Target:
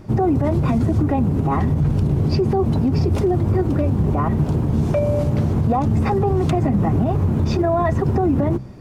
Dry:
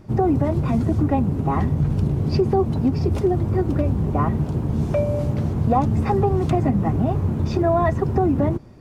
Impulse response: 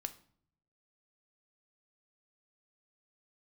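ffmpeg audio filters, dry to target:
-af "bandreject=frequency=64.42:width_type=h:width=4,bandreject=frequency=128.84:width_type=h:width=4,bandreject=frequency=193.26:width_type=h:width=4,alimiter=limit=-16dB:level=0:latency=1:release=51,volume=5.5dB"

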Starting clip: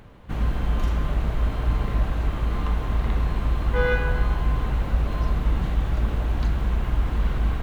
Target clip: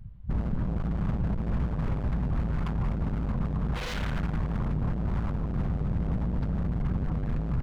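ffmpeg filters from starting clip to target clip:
ffmpeg -i in.wav -af "aresample=11025,asoftclip=type=hard:threshold=-23.5dB,aresample=44100,afftdn=noise_reduction=22:noise_floor=-35,aeval=exprs='0.0376*(abs(mod(val(0)/0.0376+3,4)-2)-1)':channel_layout=same,lowshelf=frequency=250:width_type=q:width=1.5:gain=7.5" out.wav

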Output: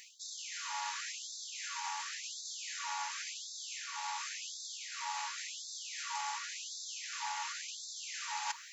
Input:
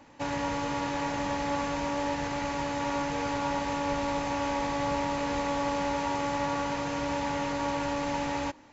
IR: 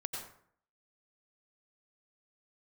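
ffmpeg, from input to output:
-af "bass=frequency=250:gain=12,treble=frequency=4000:gain=11,areverse,acompressor=threshold=-37dB:ratio=16,areverse,afftfilt=real='re*gte(b*sr/1024,740*pow(3500/740,0.5+0.5*sin(2*PI*0.92*pts/sr)))':imag='im*gte(b*sr/1024,740*pow(3500/740,0.5+0.5*sin(2*PI*0.92*pts/sr)))':win_size=1024:overlap=0.75,volume=8.5dB"

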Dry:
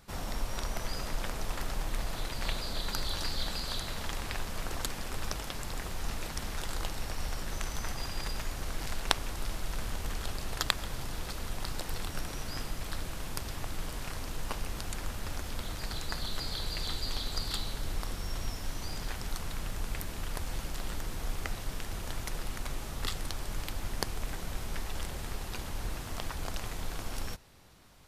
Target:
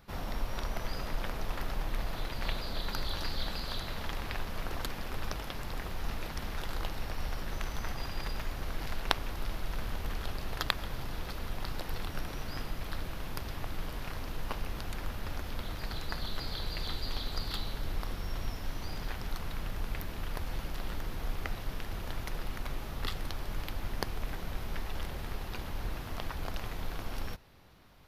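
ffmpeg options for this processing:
ffmpeg -i in.wav -af "equalizer=frequency=8000:width=1.2:gain=-13" out.wav

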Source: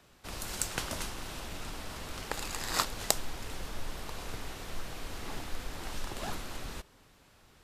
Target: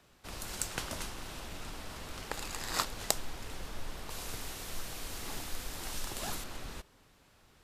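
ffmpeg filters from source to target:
ffmpeg -i in.wav -filter_complex "[0:a]asettb=1/sr,asplit=3[link_01][link_02][link_03];[link_01]atrim=end=4.104[link_04];[link_02]atrim=start=4.1:end=6.44,asetpts=PTS-STARTPTS,afade=type=in:duration=0.004:curve=qsin,afade=type=out:start_time=2.336:duration=0.004:curve=qsin,highshelf=frequency=4600:gain=11[link_05];[link_03]atrim=start=6.436[link_06];[link_04][link_05]acrossfade=duration=0.004:curve1=hsin:curve2=qsin[link_07];[link_07][link_06]acrossfade=duration=0.004:curve1=qsin:curve2=hsin,volume=-2.5dB" out.wav

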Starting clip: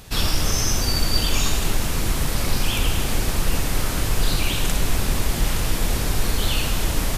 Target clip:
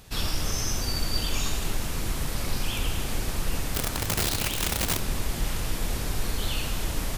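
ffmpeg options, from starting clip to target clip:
ffmpeg -i in.wav -filter_complex "[0:a]asplit=3[link_01][link_02][link_03];[link_01]afade=type=out:start_time=3.74:duration=0.02[link_04];[link_02]aeval=exprs='(mod(5.31*val(0)+1,2)-1)/5.31':channel_layout=same,afade=type=in:start_time=3.74:duration=0.02,afade=type=out:start_time=4.98:duration=0.02[link_05];[link_03]afade=type=in:start_time=4.98:duration=0.02[link_06];[link_04][link_05][link_06]amix=inputs=3:normalize=0,volume=-7dB" out.wav

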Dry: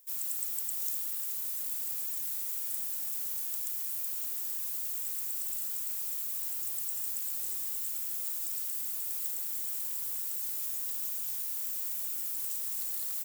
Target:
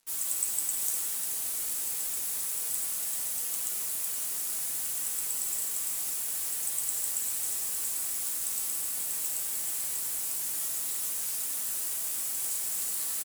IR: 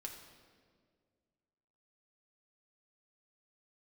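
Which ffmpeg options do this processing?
-filter_complex "[0:a]acrossover=split=500|5900[link_01][link_02][link_03];[link_02]aecho=1:1:6.2:0.73[link_04];[link_03]acontrast=50[link_05];[link_01][link_04][link_05]amix=inputs=3:normalize=0,highpass=170,acrusher=bits=6:mix=0:aa=0.5[link_06];[1:a]atrim=start_sample=2205,asetrate=22932,aresample=44100[link_07];[link_06][link_07]afir=irnorm=-1:irlink=0,volume=3.5dB"

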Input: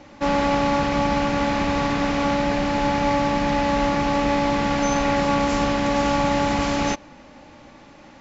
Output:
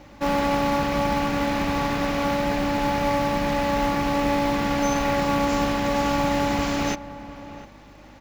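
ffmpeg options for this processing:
ffmpeg -i in.wav -filter_complex "[0:a]aeval=exprs='val(0)+0.00316*(sin(2*PI*50*n/s)+sin(2*PI*2*50*n/s)/2+sin(2*PI*3*50*n/s)/3+sin(2*PI*4*50*n/s)/4+sin(2*PI*5*50*n/s)/5)':channel_layout=same,acrusher=bits=6:mode=log:mix=0:aa=0.000001,asplit=2[link_01][link_02];[link_02]adelay=699.7,volume=-15dB,highshelf=frequency=4000:gain=-15.7[link_03];[link_01][link_03]amix=inputs=2:normalize=0,volume=-2dB" out.wav

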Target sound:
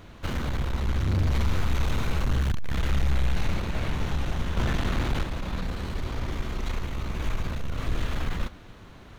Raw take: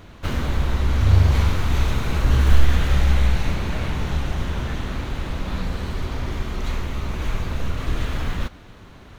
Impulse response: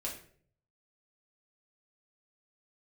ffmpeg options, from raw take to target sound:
-filter_complex "[0:a]asettb=1/sr,asplit=3[link_01][link_02][link_03];[link_01]atrim=end=4.574[link_04];[link_02]atrim=start=4.57:end=5.24,asetpts=PTS-STARTPTS,afade=type=in:duration=0.004:curve=qsin,afade=type=out:start_time=0.666:duration=0.004:curve=qsin,acontrast=75[link_05];[link_03]atrim=start=5.236[link_06];[link_04][link_05]acrossfade=duration=0.004:curve1=hsin:curve2=qsin[link_07];[link_07][link_06]acrossfade=duration=0.004:curve1=qsin:curve2=hsin,aeval=exprs='(tanh(7.94*val(0)+0.35)-tanh(0.35))/7.94':channel_layout=same,asplit=2[link_08][link_09];[1:a]atrim=start_sample=2205[link_10];[link_09][link_10]afir=irnorm=-1:irlink=0,volume=-20dB[link_11];[link_08][link_11]amix=inputs=2:normalize=0,volume=-2.5dB"

